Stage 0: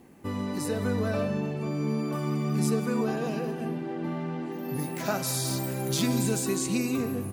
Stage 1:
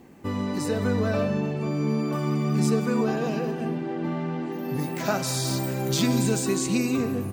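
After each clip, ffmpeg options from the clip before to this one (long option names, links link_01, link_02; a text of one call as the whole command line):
ffmpeg -i in.wav -af "equalizer=frequency=11000:width=3.1:gain=-14.5,volume=3.5dB" out.wav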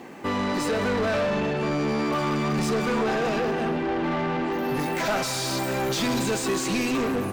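ffmpeg -i in.wav -filter_complex "[0:a]asplit=2[link_01][link_02];[link_02]highpass=frequency=720:poles=1,volume=28dB,asoftclip=type=tanh:threshold=-10.5dB[link_03];[link_01][link_03]amix=inputs=2:normalize=0,lowpass=frequency=3200:poles=1,volume=-6dB,volume=-6.5dB" out.wav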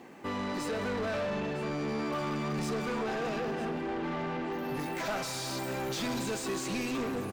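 ffmpeg -i in.wav -af "aecho=1:1:956:0.168,volume=-8.5dB" out.wav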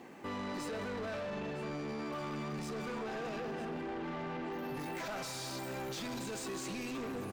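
ffmpeg -i in.wav -af "alimiter=level_in=9.5dB:limit=-24dB:level=0:latency=1:release=16,volume=-9.5dB,volume=-1.5dB" out.wav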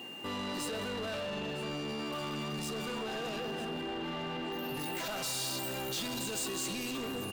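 ffmpeg -i in.wav -af "aeval=exprs='val(0)+0.00398*sin(2*PI*2800*n/s)':channel_layout=same,aexciter=amount=1.6:drive=7.2:freq=3200,volume=1.5dB" out.wav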